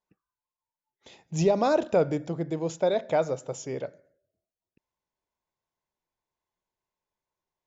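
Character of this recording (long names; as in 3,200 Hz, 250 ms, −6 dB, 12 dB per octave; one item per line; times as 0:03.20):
background noise floor −94 dBFS
spectral slope −6.0 dB per octave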